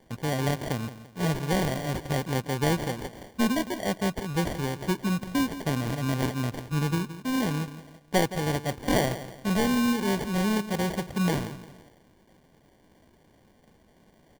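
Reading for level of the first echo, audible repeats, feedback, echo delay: −13.5 dB, 3, 36%, 170 ms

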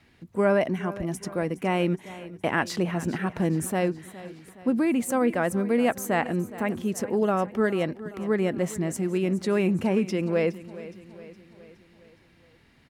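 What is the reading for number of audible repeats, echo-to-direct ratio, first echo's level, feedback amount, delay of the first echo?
4, −15.0 dB, −16.5 dB, 54%, 416 ms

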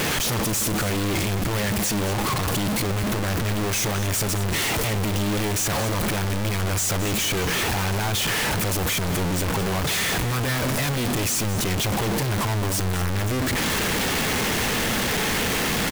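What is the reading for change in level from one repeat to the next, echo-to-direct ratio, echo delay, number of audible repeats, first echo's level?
repeats not evenly spaced, −13.0 dB, 219 ms, 1, −13.0 dB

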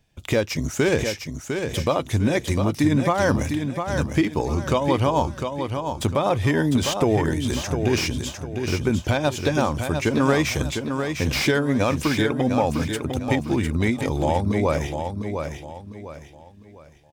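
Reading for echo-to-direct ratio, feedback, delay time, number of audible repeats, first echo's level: −6.0 dB, 34%, 703 ms, 4, −6.5 dB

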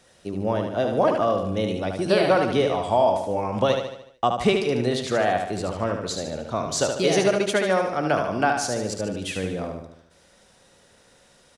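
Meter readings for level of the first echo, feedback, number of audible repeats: −5.5 dB, 50%, 5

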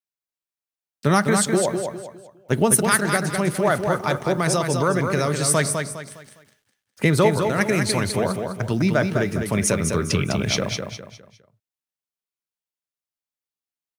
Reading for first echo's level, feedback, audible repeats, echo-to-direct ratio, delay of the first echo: −5.5 dB, 35%, 4, −5.0 dB, 204 ms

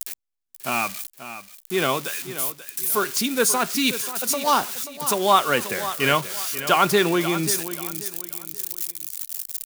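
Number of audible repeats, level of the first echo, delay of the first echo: 3, −12.5 dB, 535 ms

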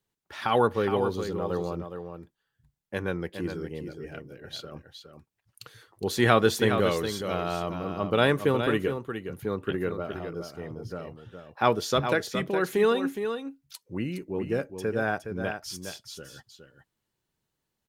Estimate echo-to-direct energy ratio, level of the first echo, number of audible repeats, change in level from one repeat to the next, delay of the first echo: −8.0 dB, −8.0 dB, 1, repeats not evenly spaced, 415 ms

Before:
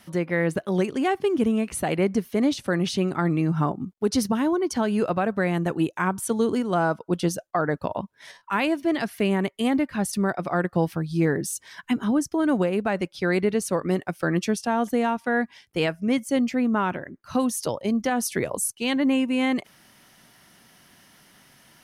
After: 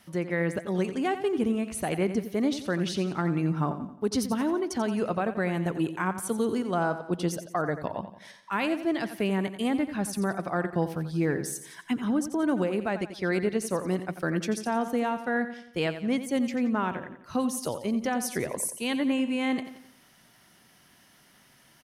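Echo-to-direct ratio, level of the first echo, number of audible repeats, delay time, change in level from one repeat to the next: −10.5 dB, −11.5 dB, 4, 88 ms, −7.0 dB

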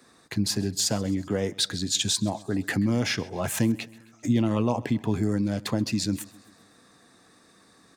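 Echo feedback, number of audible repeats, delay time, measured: 54%, 3, 132 ms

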